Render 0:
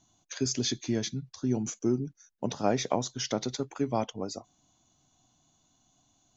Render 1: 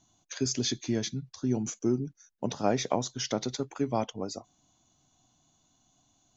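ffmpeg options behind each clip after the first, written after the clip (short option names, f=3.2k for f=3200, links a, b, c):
-af anull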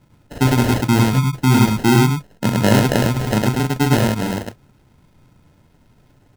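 -filter_complex "[0:a]bass=f=250:g=13,treble=f=4k:g=1,acrusher=samples=38:mix=1:aa=0.000001,asplit=2[a][b];[b]aecho=0:1:37.9|105:0.562|0.891[c];[a][c]amix=inputs=2:normalize=0,volume=6dB"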